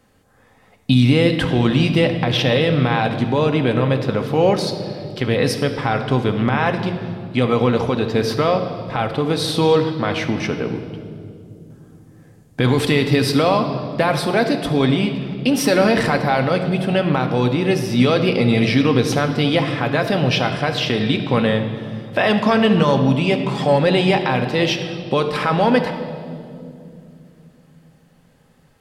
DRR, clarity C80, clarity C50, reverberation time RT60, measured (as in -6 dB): 5.0 dB, 9.5 dB, 8.0 dB, 2.6 s